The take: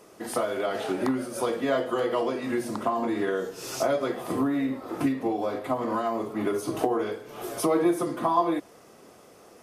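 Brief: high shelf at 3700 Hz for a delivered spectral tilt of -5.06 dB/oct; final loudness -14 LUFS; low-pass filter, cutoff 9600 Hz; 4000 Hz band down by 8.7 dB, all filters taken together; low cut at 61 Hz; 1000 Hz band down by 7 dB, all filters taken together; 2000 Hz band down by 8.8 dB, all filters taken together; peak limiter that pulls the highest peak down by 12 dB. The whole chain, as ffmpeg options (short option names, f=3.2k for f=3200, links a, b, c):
-af "highpass=61,lowpass=9.6k,equalizer=f=1k:t=o:g=-7.5,equalizer=f=2k:t=o:g=-6.5,highshelf=f=3.7k:g=-3.5,equalizer=f=4k:t=o:g=-6.5,volume=19.5dB,alimiter=limit=-5dB:level=0:latency=1"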